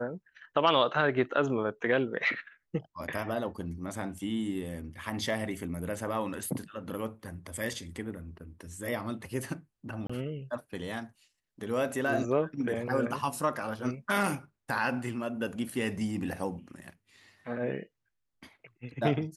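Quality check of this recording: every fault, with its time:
10.07–10.10 s: dropout 25 ms

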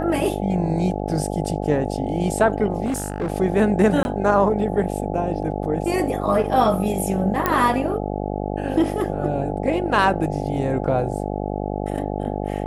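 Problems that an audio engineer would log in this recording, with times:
buzz 50 Hz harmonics 17 -26 dBFS
2.85–3.30 s: clipped -20 dBFS
4.03–4.05 s: dropout 21 ms
7.46 s: pop -5 dBFS

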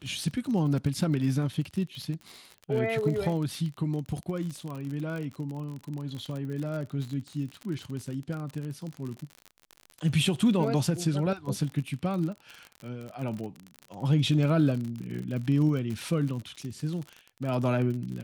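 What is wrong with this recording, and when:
crackle 47 per s -33 dBFS

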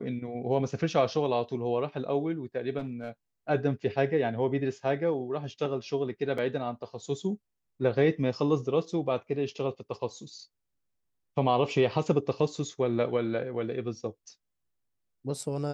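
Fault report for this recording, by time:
2.78–3.10 s: clipped -30.5 dBFS
6.38 s: dropout 3.6 ms

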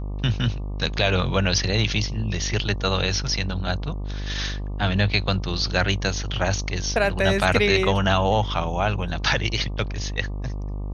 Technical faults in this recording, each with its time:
buzz 50 Hz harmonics 24 -29 dBFS

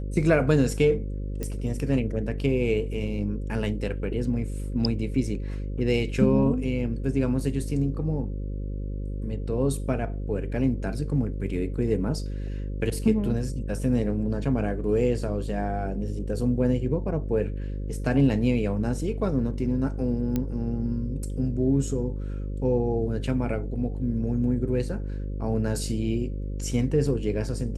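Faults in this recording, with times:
buzz 50 Hz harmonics 11 -31 dBFS
1.43 s: pop -18 dBFS
20.36 s: pop -14 dBFS

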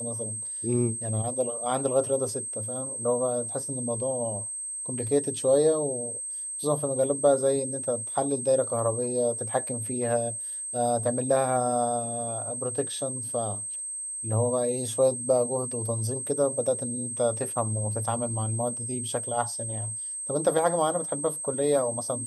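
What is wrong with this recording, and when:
whine 8.3 kHz -32 dBFS

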